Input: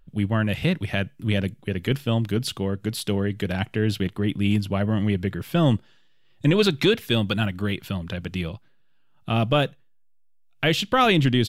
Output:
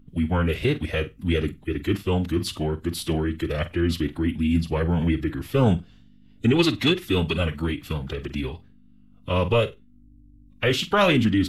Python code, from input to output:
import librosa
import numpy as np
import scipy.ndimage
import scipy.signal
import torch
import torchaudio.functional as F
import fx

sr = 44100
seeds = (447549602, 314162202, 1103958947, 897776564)

y = fx.dmg_buzz(x, sr, base_hz=50.0, harmonics=7, level_db=-52.0, tilt_db=-5, odd_only=False)
y = fx.room_flutter(y, sr, wall_m=8.1, rt60_s=0.21)
y = fx.pitch_keep_formants(y, sr, semitones=-4.0)